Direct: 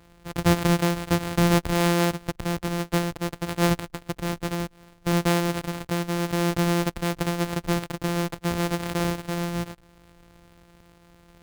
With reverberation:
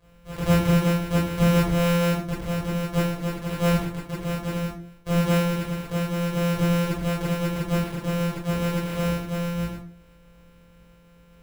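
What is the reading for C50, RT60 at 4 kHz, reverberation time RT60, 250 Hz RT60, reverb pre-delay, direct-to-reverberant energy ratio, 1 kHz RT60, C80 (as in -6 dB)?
3.0 dB, 0.30 s, 0.45 s, 0.55 s, 19 ms, -9.5 dB, 0.40 s, 9.0 dB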